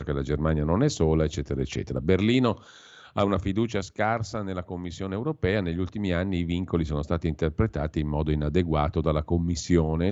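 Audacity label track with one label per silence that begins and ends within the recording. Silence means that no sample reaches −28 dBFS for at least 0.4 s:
2.530000	3.160000	silence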